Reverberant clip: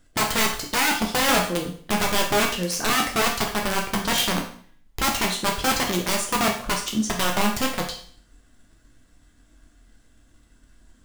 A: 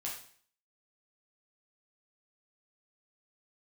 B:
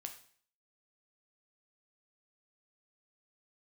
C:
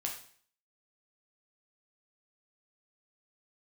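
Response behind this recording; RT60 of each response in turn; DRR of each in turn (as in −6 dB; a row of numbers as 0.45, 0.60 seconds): C; 0.50, 0.50, 0.50 seconds; −4.5, 4.5, −0.5 decibels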